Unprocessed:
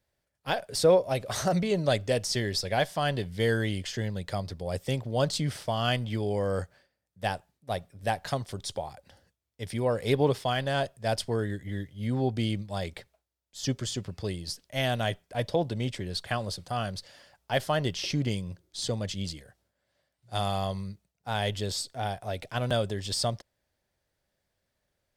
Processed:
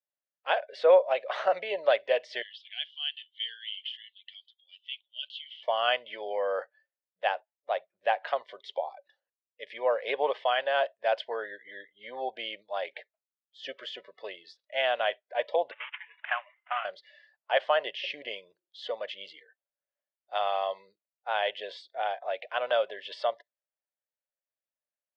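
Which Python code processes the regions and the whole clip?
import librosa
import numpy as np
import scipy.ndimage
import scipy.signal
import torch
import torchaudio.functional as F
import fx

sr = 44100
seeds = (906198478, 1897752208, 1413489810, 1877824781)

y = fx.chain(x, sr, fx.bandpass_q(hz=3100.0, q=8.0),
    fx.tilt_eq(slope=3.5), at=(2.42, 5.63))
y = fx.chain(y, sr, fx.cvsd(bps=16000),
    fx.highpass(hz=880.0, slope=24),
    fx.transient(attack_db=6, sustain_db=-5), at=(15.71, 16.85))
y = scipy.signal.sosfilt(scipy.signal.cheby1(3, 1.0, [540.0, 3000.0], 'bandpass', fs=sr, output='sos'), y)
y = fx.noise_reduce_blind(y, sr, reduce_db=23)
y = y * librosa.db_to_amplitude(3.5)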